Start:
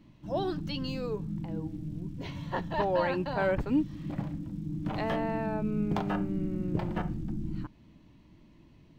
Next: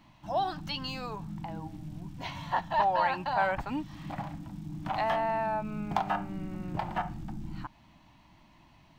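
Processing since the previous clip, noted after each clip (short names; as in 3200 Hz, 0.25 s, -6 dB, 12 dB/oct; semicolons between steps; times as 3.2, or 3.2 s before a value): resonant low shelf 590 Hz -8.5 dB, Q 3; in parallel at -1 dB: compressor, threshold -40 dBFS, peak gain reduction 16 dB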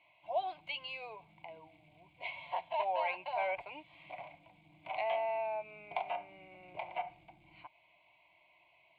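double band-pass 1300 Hz, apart 1.5 oct; fixed phaser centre 1200 Hz, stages 8; gain +9 dB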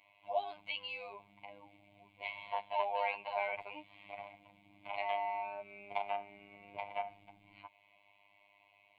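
robotiser 101 Hz; gain +2 dB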